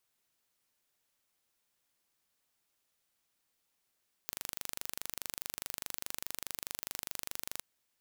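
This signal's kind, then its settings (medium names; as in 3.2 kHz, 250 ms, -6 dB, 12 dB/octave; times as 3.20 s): pulse train 24.8 per s, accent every 0, -10.5 dBFS 3.32 s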